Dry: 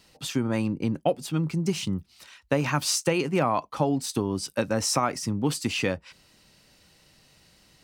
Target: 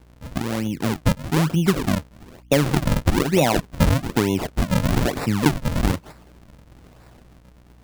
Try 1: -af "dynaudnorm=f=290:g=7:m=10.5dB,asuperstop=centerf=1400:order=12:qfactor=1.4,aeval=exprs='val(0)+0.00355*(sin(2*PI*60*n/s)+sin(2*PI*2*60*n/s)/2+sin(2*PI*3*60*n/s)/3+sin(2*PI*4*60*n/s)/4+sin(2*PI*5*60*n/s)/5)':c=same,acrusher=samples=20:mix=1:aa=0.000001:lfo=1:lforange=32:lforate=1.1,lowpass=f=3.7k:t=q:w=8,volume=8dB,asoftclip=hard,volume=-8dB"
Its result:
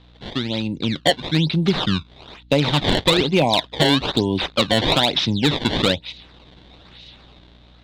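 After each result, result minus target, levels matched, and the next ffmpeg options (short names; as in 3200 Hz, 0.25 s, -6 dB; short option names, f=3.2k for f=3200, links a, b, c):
4000 Hz band +10.5 dB; decimation with a swept rate: distortion -8 dB
-af "dynaudnorm=f=290:g=7:m=10.5dB,asuperstop=centerf=1400:order=12:qfactor=1.4,aeval=exprs='val(0)+0.00355*(sin(2*PI*60*n/s)+sin(2*PI*2*60*n/s)/2+sin(2*PI*3*60*n/s)/3+sin(2*PI*4*60*n/s)/4+sin(2*PI*5*60*n/s)/5)':c=same,acrusher=samples=20:mix=1:aa=0.000001:lfo=1:lforange=32:lforate=1.1,volume=8dB,asoftclip=hard,volume=-8dB"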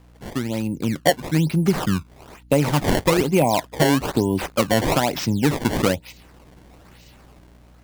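decimation with a swept rate: distortion -8 dB
-af "dynaudnorm=f=290:g=7:m=10.5dB,asuperstop=centerf=1400:order=12:qfactor=1.4,aeval=exprs='val(0)+0.00355*(sin(2*PI*60*n/s)+sin(2*PI*2*60*n/s)/2+sin(2*PI*3*60*n/s)/3+sin(2*PI*4*60*n/s)/4+sin(2*PI*5*60*n/s)/5)':c=same,acrusher=samples=67:mix=1:aa=0.000001:lfo=1:lforange=107:lforate=1.1,volume=8dB,asoftclip=hard,volume=-8dB"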